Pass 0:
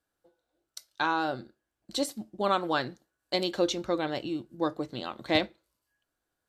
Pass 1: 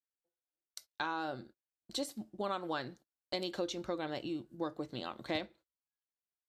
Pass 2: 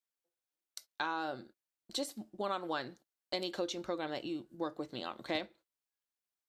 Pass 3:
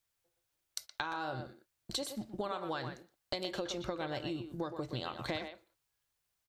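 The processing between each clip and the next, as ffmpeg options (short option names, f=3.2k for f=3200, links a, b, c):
-af "agate=range=-23dB:threshold=-50dB:ratio=16:detection=peak,acompressor=threshold=-31dB:ratio=2.5,volume=-4dB"
-af "equalizer=f=78:w=0.58:g=-8,volume=1dB"
-filter_complex "[0:a]lowshelf=f=160:t=q:w=1.5:g=10,acompressor=threshold=-44dB:ratio=6,asplit=2[a][b];[b]adelay=120,highpass=300,lowpass=3.4k,asoftclip=type=hard:threshold=-36.5dB,volume=-7dB[c];[a][c]amix=inputs=2:normalize=0,volume=9dB"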